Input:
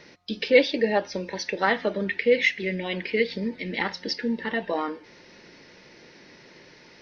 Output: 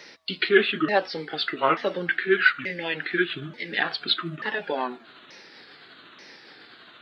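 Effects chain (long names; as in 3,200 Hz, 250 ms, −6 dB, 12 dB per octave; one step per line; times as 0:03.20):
pitch shifter swept by a sawtooth −7 semitones, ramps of 884 ms
high-pass filter 600 Hz 6 dB per octave
high-shelf EQ 4,800 Hz +6 dB
level +4.5 dB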